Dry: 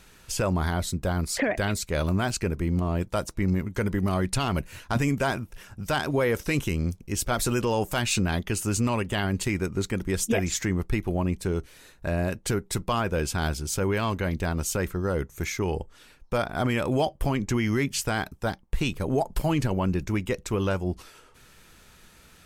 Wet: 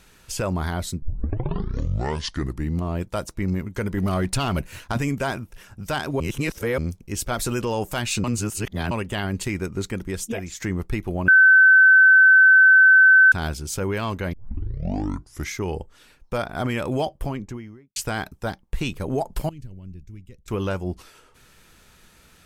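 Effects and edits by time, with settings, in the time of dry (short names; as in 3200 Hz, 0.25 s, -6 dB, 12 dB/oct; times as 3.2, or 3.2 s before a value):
1.02 tape start 1.81 s
3.97–4.92 sample leveller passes 1
6.2–6.78 reverse
8.24–8.91 reverse
9.89–10.6 fade out, to -9.5 dB
11.28–13.32 bleep 1530 Hz -9 dBFS
14.33 tape start 1.21 s
16.97–17.96 studio fade out
19.49–20.48 passive tone stack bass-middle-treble 10-0-1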